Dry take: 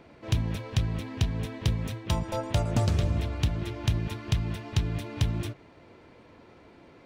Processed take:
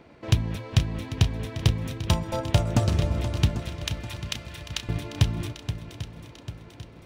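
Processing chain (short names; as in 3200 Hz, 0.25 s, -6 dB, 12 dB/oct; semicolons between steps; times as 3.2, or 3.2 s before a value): 3.6–4.89 HPF 1400 Hz 12 dB/oct; transient shaper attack +6 dB, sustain +1 dB; swung echo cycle 0.794 s, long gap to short 1.5:1, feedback 47%, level -11 dB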